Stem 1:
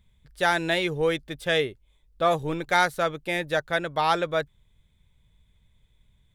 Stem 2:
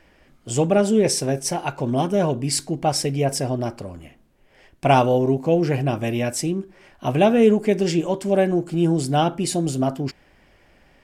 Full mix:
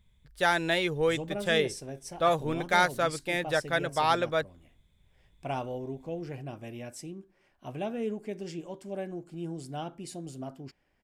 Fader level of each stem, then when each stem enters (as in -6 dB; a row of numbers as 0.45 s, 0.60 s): -2.5 dB, -18.0 dB; 0.00 s, 0.60 s